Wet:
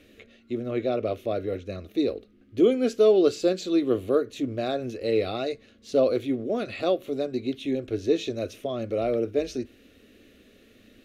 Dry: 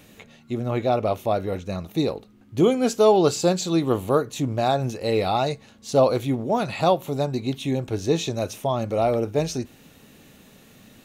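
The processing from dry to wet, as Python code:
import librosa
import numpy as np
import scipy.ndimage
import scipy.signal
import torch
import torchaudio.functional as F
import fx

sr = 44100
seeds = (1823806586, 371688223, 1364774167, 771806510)

y = scipy.signal.sosfilt(scipy.signal.butter(2, 9700.0, 'lowpass', fs=sr, output='sos'), x)
y = fx.peak_eq(y, sr, hz=7600.0, db=-12.5, octaves=1.4)
y = fx.fixed_phaser(y, sr, hz=370.0, stages=4)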